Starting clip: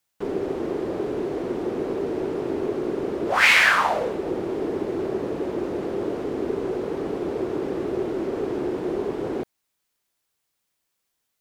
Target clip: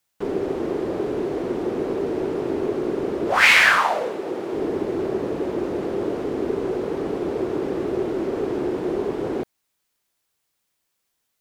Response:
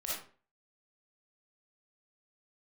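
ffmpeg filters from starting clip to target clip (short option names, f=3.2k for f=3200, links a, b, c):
-filter_complex "[0:a]asettb=1/sr,asplit=3[a][b][c];[a]atrim=end=3.784[d];[b]atrim=start=3.78:end=4.53,asetpts=PTS-STARTPTS,afade=t=in:d=0.004:c=qsin,afade=t=out:st=0.746:d=0.004:c=qsin,highpass=f=390:p=1[e];[c]atrim=start=4.526[f];[d][e]acrossfade=d=0.004:c1=hsin:c2=qsin[g];[g][f]acrossfade=d=0.004:c1=qsin:c2=hsin,volume=2dB"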